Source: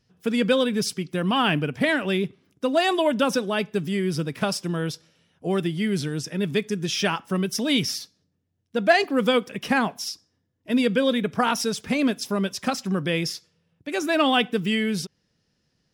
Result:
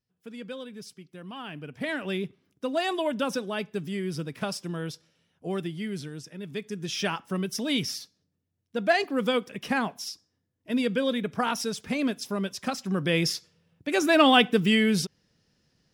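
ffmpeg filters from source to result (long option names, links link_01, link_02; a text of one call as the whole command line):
ffmpeg -i in.wav -af "volume=9dB,afade=type=in:start_time=1.53:duration=0.56:silence=0.266073,afade=type=out:start_time=5.48:duration=0.95:silence=0.446684,afade=type=in:start_time=6.43:duration=0.58:silence=0.375837,afade=type=in:start_time=12.83:duration=0.48:silence=0.446684" out.wav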